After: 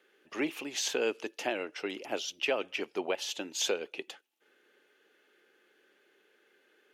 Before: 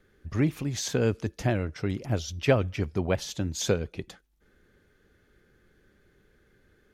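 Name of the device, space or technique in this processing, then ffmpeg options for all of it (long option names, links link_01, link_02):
laptop speaker: -af "highpass=frequency=330:width=0.5412,highpass=frequency=330:width=1.3066,equalizer=frequency=850:width_type=o:width=0.22:gain=5,equalizer=frequency=2800:width_type=o:width=0.48:gain=11,alimiter=limit=-17.5dB:level=0:latency=1:release=121,volume=-1.5dB"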